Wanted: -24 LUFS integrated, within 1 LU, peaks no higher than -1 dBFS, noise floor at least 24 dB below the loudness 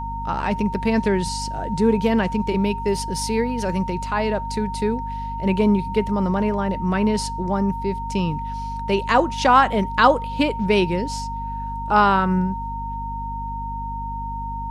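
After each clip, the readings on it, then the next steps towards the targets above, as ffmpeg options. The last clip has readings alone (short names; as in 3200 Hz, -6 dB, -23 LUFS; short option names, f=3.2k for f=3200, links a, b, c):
hum 50 Hz; harmonics up to 250 Hz; hum level -29 dBFS; steady tone 920 Hz; tone level -28 dBFS; loudness -22.0 LUFS; peak -3.0 dBFS; loudness target -24.0 LUFS
-> -af "bandreject=f=50:t=h:w=4,bandreject=f=100:t=h:w=4,bandreject=f=150:t=h:w=4,bandreject=f=200:t=h:w=4,bandreject=f=250:t=h:w=4"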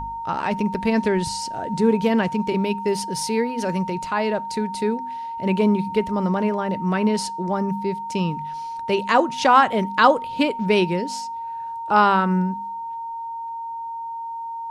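hum none; steady tone 920 Hz; tone level -28 dBFS
-> -af "bandreject=f=920:w=30"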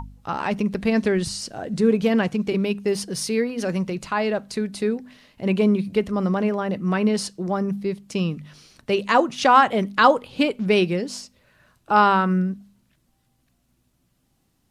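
steady tone none; loudness -22.0 LUFS; peak -2.5 dBFS; loudness target -24.0 LUFS
-> -af "volume=-2dB"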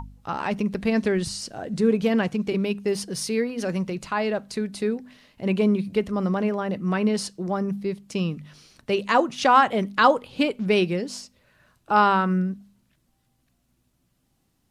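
loudness -24.0 LUFS; peak -4.5 dBFS; noise floor -70 dBFS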